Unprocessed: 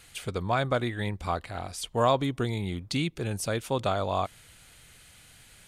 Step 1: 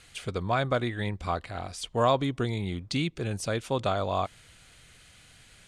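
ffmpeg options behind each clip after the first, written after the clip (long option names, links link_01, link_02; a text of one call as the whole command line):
ffmpeg -i in.wav -af "lowpass=8200,bandreject=frequency=870:width=17" out.wav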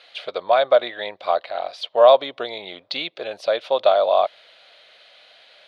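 ffmpeg -i in.wav -af "highpass=frequency=600:width_type=q:width=4.9,highshelf=frequency=5600:width_type=q:width=3:gain=-13,volume=2dB" out.wav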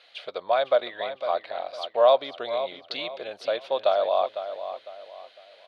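ffmpeg -i in.wav -filter_complex "[0:a]asplit=2[link_01][link_02];[link_02]adelay=504,lowpass=frequency=4800:poles=1,volume=-10.5dB,asplit=2[link_03][link_04];[link_04]adelay=504,lowpass=frequency=4800:poles=1,volume=0.34,asplit=2[link_05][link_06];[link_06]adelay=504,lowpass=frequency=4800:poles=1,volume=0.34,asplit=2[link_07][link_08];[link_08]adelay=504,lowpass=frequency=4800:poles=1,volume=0.34[link_09];[link_01][link_03][link_05][link_07][link_09]amix=inputs=5:normalize=0,volume=-6dB" out.wav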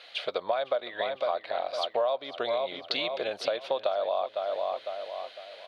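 ffmpeg -i in.wav -af "acompressor=threshold=-32dB:ratio=6,volume=6dB" out.wav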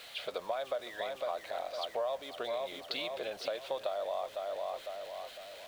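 ffmpeg -i in.wav -af "aeval=exprs='val(0)+0.5*0.01*sgn(val(0))':channel_layout=same,volume=-8dB" out.wav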